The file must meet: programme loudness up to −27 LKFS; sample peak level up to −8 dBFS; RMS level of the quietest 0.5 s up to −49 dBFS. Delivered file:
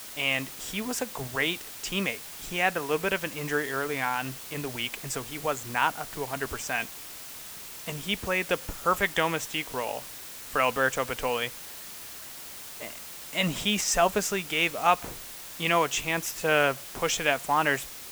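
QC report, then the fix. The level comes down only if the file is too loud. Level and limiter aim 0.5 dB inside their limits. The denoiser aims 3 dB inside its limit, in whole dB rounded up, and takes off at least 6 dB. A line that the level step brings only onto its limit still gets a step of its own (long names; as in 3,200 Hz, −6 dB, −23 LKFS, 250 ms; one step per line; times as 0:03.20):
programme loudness −28.0 LKFS: in spec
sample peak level −7.5 dBFS: out of spec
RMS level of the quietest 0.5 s −42 dBFS: out of spec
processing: broadband denoise 10 dB, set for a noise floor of −42 dBFS
brickwall limiter −8.5 dBFS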